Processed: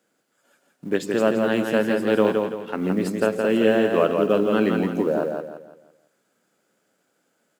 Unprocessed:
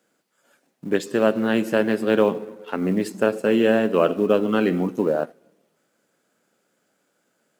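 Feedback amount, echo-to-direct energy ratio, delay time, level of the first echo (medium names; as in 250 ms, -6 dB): 36%, -4.0 dB, 168 ms, -4.5 dB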